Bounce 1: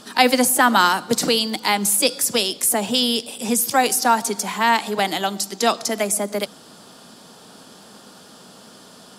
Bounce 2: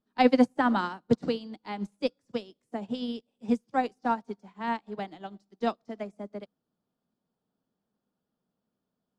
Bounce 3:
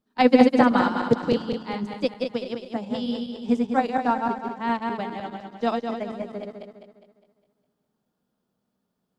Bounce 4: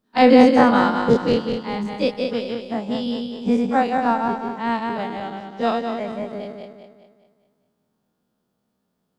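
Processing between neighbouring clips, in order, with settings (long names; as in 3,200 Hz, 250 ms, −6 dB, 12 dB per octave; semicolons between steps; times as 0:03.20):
low-pass filter 5,800 Hz 12 dB per octave; spectral tilt −3.5 dB per octave; expander for the loud parts 2.5 to 1, over −33 dBFS; level −6 dB
feedback delay that plays each chunk backwards 102 ms, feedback 66%, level −3.5 dB; level +3.5 dB
every bin's largest magnitude spread in time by 60 ms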